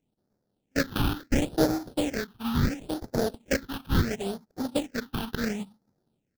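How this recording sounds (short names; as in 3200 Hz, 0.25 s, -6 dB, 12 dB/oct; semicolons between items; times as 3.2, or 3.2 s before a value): aliases and images of a low sample rate 1100 Hz, jitter 20%; phasing stages 6, 0.72 Hz, lowest notch 530–2800 Hz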